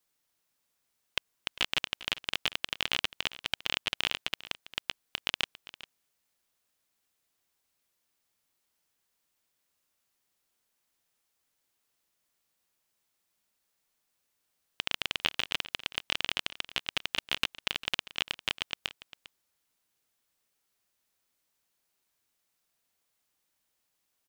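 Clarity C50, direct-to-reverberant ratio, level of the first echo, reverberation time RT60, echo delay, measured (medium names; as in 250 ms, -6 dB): no reverb, no reverb, -17.0 dB, no reverb, 400 ms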